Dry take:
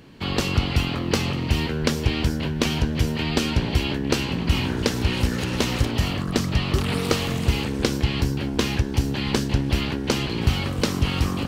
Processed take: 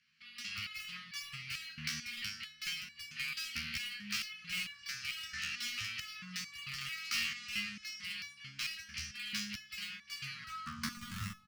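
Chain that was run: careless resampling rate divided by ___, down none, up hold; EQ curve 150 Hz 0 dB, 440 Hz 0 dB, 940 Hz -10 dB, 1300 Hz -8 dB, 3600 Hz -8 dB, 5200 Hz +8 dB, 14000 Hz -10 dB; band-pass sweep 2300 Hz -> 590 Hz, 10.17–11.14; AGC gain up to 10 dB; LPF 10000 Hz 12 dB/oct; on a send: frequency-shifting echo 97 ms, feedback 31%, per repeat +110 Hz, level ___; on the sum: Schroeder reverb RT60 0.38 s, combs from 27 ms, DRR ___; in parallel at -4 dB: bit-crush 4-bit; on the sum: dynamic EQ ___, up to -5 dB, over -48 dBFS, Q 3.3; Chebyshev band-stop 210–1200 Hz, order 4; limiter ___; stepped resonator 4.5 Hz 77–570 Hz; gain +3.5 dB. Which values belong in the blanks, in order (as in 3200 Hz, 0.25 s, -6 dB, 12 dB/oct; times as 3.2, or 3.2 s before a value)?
3×, -24 dB, 13.5 dB, 350 Hz, -14 dBFS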